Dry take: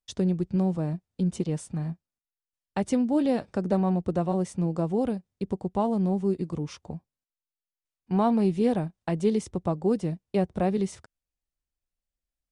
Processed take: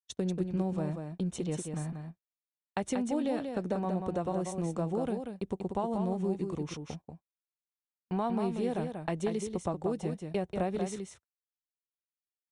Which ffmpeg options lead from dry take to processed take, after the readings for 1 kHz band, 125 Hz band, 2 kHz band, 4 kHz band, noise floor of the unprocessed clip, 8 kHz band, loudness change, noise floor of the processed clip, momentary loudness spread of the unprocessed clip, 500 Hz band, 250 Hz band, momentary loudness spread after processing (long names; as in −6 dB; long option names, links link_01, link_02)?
−4.5 dB, −7.0 dB, −2.0 dB, −3.0 dB, below −85 dBFS, 0.0 dB, −6.5 dB, below −85 dBFS, 10 LU, −5.0 dB, −7.5 dB, 8 LU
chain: -af "bandreject=frequency=4800:width=6.1,agate=range=-35dB:threshold=-40dB:ratio=16:detection=peak,equalizer=frequency=120:width=0.35:gain=-6,acompressor=threshold=-28dB:ratio=6,aecho=1:1:187:0.501"